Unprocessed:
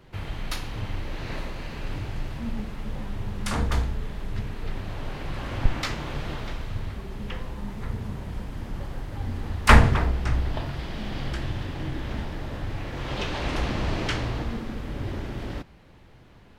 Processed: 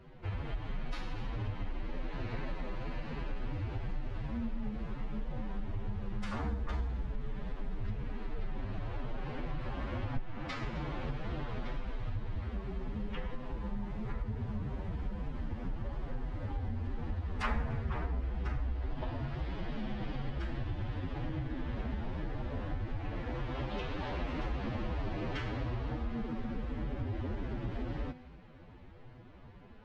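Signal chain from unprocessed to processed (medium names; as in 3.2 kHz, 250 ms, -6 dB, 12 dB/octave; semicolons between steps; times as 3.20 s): feedback comb 250 Hz, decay 0.34 s, harmonics all, mix 50%; time stretch by phase-locked vocoder 1.8×; on a send: feedback echo behind a high-pass 259 ms, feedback 58%, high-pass 1.8 kHz, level -20.5 dB; on the sum: compression 4:1, threshold -38 dBFS, peak gain reduction 20.5 dB; tape spacing loss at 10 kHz 23 dB; trim +5.5 dB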